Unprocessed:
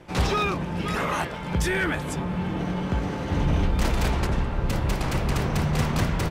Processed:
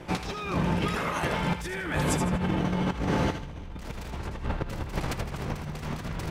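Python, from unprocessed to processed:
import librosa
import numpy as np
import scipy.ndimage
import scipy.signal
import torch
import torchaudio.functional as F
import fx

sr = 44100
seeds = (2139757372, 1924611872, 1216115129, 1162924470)

p1 = np.minimum(x, 2.0 * 10.0 ** (-16.5 / 20.0) - x)
p2 = fx.over_compress(p1, sr, threshold_db=-29.0, ratio=-0.5)
y = p2 + fx.echo_thinned(p2, sr, ms=79, feedback_pct=33, hz=1100.0, wet_db=-7.0, dry=0)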